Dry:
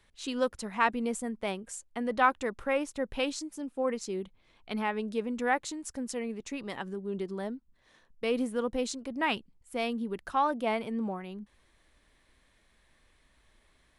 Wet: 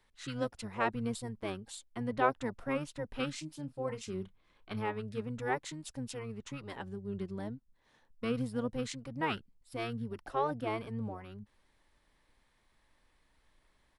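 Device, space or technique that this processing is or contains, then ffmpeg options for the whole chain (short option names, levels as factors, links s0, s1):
octave pedal: -filter_complex "[0:a]asettb=1/sr,asplit=3[s0][s1][s2];[s0]atrim=end=3.314[s3];[s1]atrim=start=3.31:end=4.89,asetpts=PTS-STARTPTS,afade=t=in:d=0.004:c=qsin,afade=t=out:st=1.576:d=0.004:c=qsin,asplit=2[s4][s5];[s5]adelay=32,volume=0.2[s6];[s4][s6]amix=inputs=2:normalize=0,atrim=end_sample=69678[s7];[s2]atrim=start=4.886[s8];[s3][s7]acrossfade=d=0.004:c1=hsin:c2=qsin[s9];[s9][s8]acrossfade=d=0.004:c1=qsin:c2=hsin,asplit=2[s10][s11];[s11]asetrate=22050,aresample=44100,atempo=2,volume=0.794[s12];[s10][s12]amix=inputs=2:normalize=0,volume=0.447"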